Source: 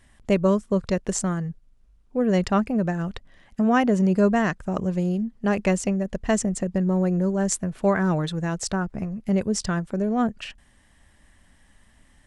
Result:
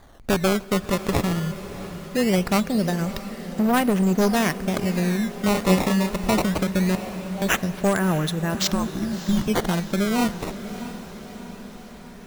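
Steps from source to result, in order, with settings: one-sided wavefolder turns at -17 dBFS; treble shelf 4.2 kHz +7.5 dB; in parallel at +3 dB: compression, threshold -32 dBFS, peak gain reduction 16.5 dB; 8.54–9.48 s: on the sum: frequency shift -400 Hz; decimation with a swept rate 16×, swing 160% 0.21 Hz; 5.52–6.13 s: doubling 32 ms -3 dB; 6.95–7.42 s: vowel filter a; echo that smears into a reverb 643 ms, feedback 62%, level -13 dB; on a send at -18.5 dB: reverberation RT60 3.4 s, pre-delay 30 ms; on the sum: trim -2 dB

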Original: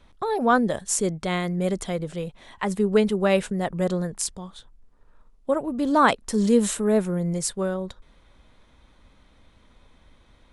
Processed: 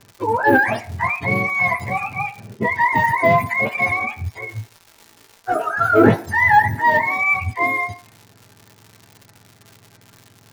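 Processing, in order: spectrum inverted on a logarithmic axis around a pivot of 630 Hz; level-controlled noise filter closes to 1.8 kHz, open at -21 dBFS; de-esser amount 100%; treble shelf 2.7 kHz +10 dB; in parallel at -4 dB: saturation -18 dBFS, distortion -12 dB; on the sum: crackle 190 per s -34 dBFS; 4.38–6.23 s: doubling 18 ms -4.5 dB; on a send at -5.5 dB: cabinet simulation 470–6700 Hz, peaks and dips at 500 Hz -7 dB, 870 Hz +8 dB, 2.9 kHz -8 dB + reverberation RT60 0.50 s, pre-delay 5 ms; on the sum: trim +2 dB

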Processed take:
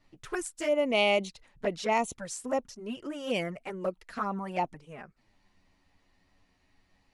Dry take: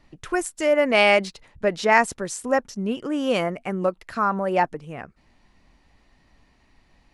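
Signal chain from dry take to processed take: treble shelf 2.7 kHz +3 dB; touch-sensitive flanger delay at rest 11.4 ms, full sweep at -16.5 dBFS; trim -6 dB

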